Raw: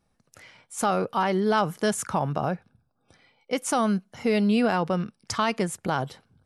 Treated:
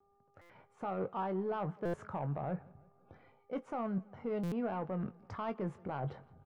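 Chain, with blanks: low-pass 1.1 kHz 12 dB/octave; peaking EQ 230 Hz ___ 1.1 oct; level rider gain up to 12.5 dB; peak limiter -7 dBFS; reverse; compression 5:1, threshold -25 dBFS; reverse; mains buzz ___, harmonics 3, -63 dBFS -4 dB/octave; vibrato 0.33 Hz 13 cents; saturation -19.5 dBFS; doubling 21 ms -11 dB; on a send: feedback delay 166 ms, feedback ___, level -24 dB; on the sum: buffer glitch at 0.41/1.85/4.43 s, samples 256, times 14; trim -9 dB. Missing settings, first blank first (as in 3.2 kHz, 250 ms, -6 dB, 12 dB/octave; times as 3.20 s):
-3 dB, 400 Hz, 51%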